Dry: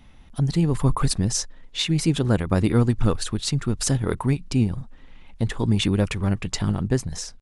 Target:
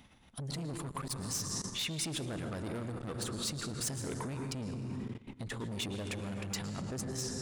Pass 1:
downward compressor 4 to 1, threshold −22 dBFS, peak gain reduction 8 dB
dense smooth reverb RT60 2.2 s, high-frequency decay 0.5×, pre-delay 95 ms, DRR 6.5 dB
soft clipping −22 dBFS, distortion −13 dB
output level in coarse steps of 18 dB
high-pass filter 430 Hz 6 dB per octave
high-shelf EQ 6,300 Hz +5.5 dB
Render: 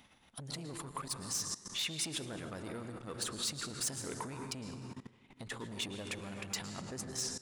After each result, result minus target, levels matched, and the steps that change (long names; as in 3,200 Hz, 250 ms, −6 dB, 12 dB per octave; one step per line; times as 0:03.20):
downward compressor: peak gain reduction +8 dB; 125 Hz band −6.0 dB
remove: downward compressor 4 to 1, threshold −22 dBFS, peak gain reduction 8 dB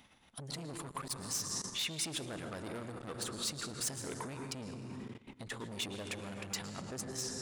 125 Hz band −5.5 dB
change: high-pass filter 140 Hz 6 dB per octave